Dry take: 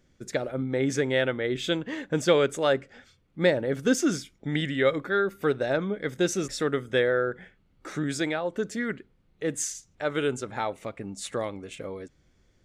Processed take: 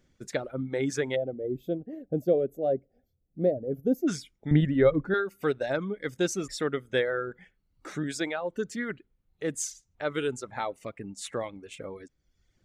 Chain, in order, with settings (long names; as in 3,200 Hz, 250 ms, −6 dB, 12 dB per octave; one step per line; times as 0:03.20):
0:01.15–0:04.08: gain on a spectral selection 790–11,000 Hz −26 dB
0:04.51–0:05.14: spectral tilt −4.5 dB per octave
reverb reduction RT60 0.84 s
level −2 dB